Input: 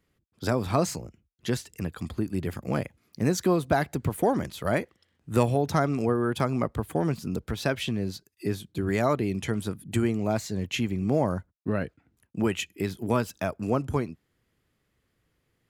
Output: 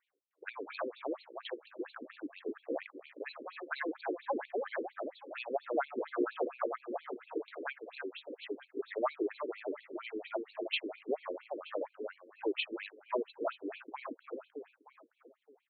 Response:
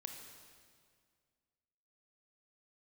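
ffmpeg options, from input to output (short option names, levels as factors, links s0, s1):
-filter_complex "[0:a]asplit=2[s0][s1];[s1]aecho=0:1:308|616|924|1232|1540|1848:0.447|0.237|0.125|0.0665|0.0352|0.0187[s2];[s0][s2]amix=inputs=2:normalize=0,afftfilt=real='re*between(b*sr/1024,360*pow(3200/360,0.5+0.5*sin(2*PI*4.3*pts/sr))/1.41,360*pow(3200/360,0.5+0.5*sin(2*PI*4.3*pts/sr))*1.41)':imag='im*between(b*sr/1024,360*pow(3200/360,0.5+0.5*sin(2*PI*4.3*pts/sr))/1.41,360*pow(3200/360,0.5+0.5*sin(2*PI*4.3*pts/sr))*1.41)':win_size=1024:overlap=0.75,volume=0.794"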